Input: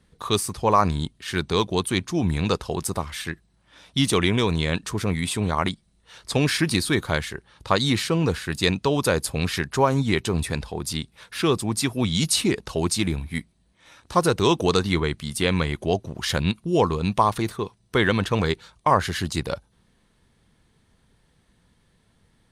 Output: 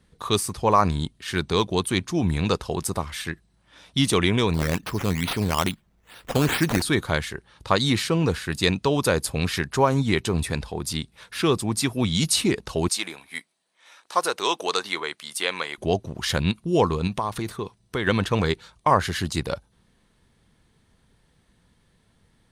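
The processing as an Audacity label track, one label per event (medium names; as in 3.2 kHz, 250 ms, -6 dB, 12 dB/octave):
4.540000	6.820000	decimation with a swept rate 9×, swing 60% 2.3 Hz
12.880000	15.780000	high-pass 620 Hz
17.070000	18.070000	compression 2.5:1, threshold -25 dBFS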